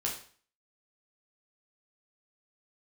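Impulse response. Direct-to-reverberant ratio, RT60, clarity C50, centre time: -3.5 dB, 0.45 s, 6.5 dB, 28 ms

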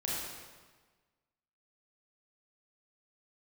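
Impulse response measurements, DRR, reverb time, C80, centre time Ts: -6.5 dB, 1.4 s, 0.5 dB, 0.103 s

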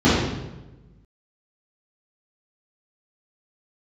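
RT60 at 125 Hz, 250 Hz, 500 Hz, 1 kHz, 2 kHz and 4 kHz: 1.5, 1.3, 1.2, 0.95, 0.85, 0.80 s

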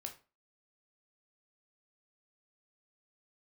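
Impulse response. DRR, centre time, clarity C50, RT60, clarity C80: 3.5 dB, 12 ms, 11.5 dB, 0.35 s, 17.5 dB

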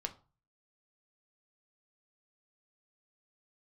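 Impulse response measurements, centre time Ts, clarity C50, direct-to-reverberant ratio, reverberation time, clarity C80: 7 ms, 16.0 dB, 5.0 dB, 0.35 s, 21.5 dB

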